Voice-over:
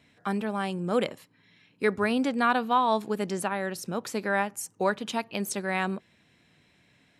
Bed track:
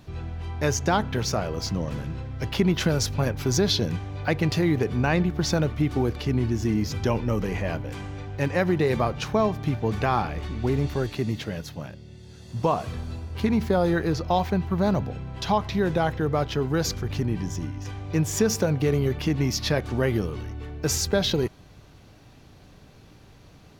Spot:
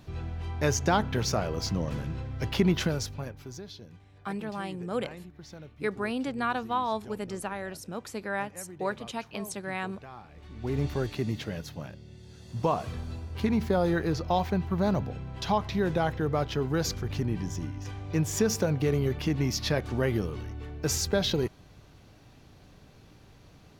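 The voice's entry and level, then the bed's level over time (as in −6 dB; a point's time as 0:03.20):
4.00 s, −5.5 dB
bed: 0:02.73 −2 dB
0:03.69 −22.5 dB
0:10.26 −22.5 dB
0:10.80 −3.5 dB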